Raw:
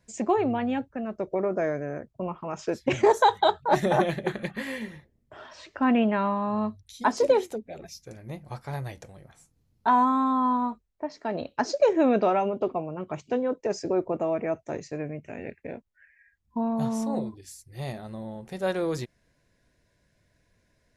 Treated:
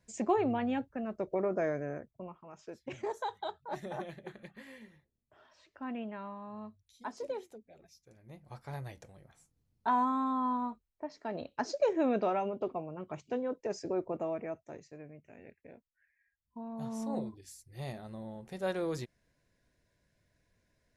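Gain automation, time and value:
1.91 s -5 dB
2.43 s -17.5 dB
8.08 s -17.5 dB
8.68 s -8 dB
14.25 s -8 dB
14.92 s -16 dB
16.65 s -16 dB
17.13 s -6.5 dB

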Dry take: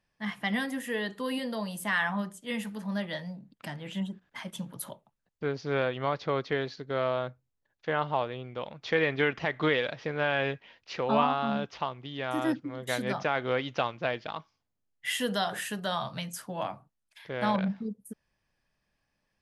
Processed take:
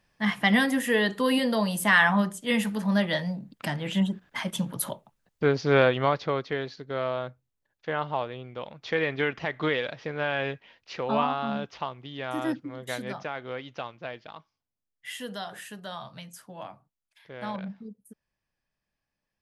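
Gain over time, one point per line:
5.91 s +8.5 dB
6.45 s -0.5 dB
12.75 s -0.5 dB
13.41 s -7 dB

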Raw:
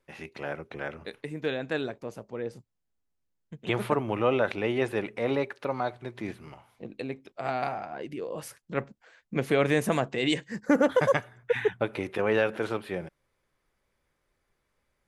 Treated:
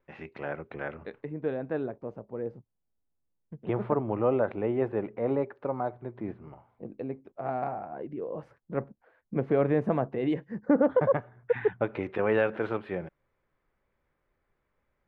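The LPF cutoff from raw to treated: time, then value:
0.95 s 2100 Hz
1.38 s 1000 Hz
11.15 s 1000 Hz
12.06 s 2100 Hz

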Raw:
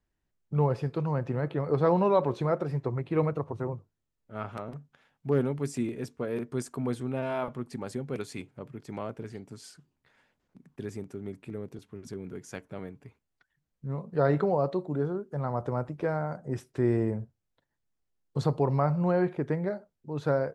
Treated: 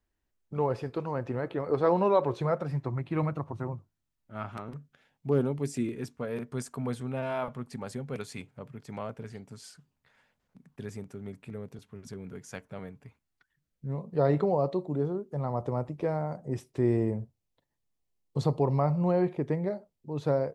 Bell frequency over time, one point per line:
bell -10 dB 0.43 oct
2.1 s 150 Hz
2.75 s 450 Hz
4.48 s 450 Hz
5.45 s 2100 Hz
6.26 s 330 Hz
13.02 s 330 Hz
14.04 s 1500 Hz

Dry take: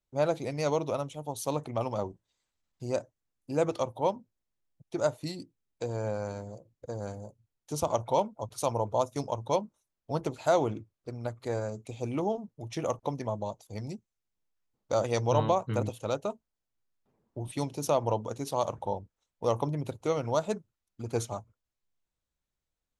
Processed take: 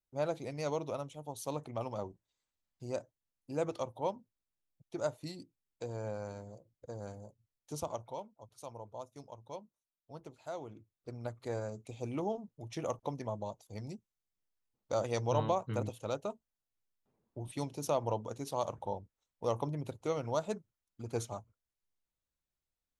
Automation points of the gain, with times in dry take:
7.75 s -7 dB
8.22 s -17.5 dB
10.68 s -17.5 dB
11.09 s -5.5 dB

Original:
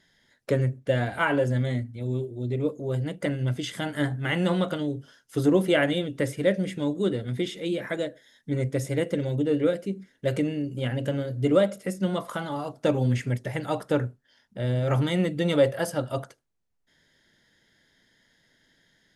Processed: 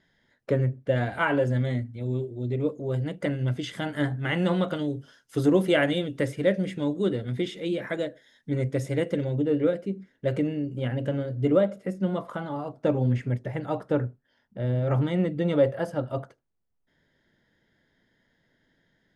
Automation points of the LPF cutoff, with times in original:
LPF 6 dB/oct
1800 Hz
from 0.96 s 3800 Hz
from 4.75 s 8300 Hz
from 6.25 s 4300 Hz
from 9.24 s 1900 Hz
from 11.53 s 1200 Hz

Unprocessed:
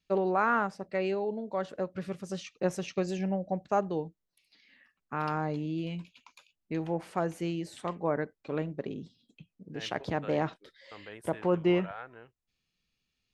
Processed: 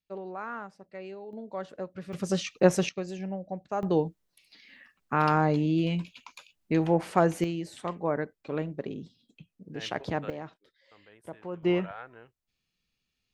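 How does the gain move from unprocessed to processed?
-11 dB
from 1.33 s -3.5 dB
from 2.13 s +9 dB
from 2.89 s -4 dB
from 3.83 s +8 dB
from 7.44 s +1 dB
from 10.3 s -10.5 dB
from 11.63 s 0 dB

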